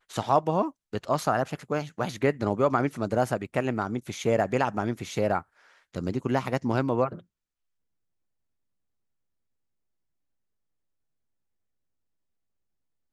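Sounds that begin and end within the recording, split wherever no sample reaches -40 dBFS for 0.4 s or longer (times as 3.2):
5.94–7.19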